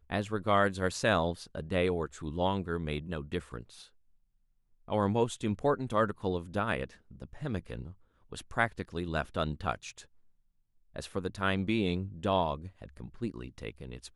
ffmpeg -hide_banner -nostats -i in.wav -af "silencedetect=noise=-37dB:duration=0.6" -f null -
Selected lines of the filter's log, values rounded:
silence_start: 3.61
silence_end: 4.88 | silence_duration: 1.28
silence_start: 9.99
silence_end: 10.96 | silence_duration: 0.97